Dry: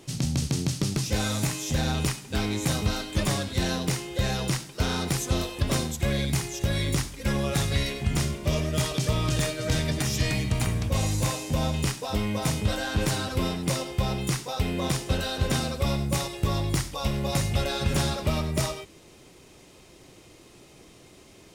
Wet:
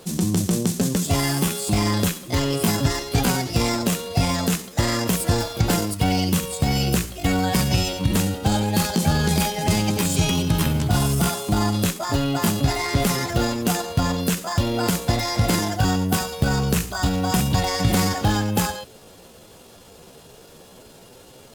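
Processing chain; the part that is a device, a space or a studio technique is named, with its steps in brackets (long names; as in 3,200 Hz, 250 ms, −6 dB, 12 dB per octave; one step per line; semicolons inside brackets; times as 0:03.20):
chipmunk voice (pitch shifter +5 semitones)
level +5.5 dB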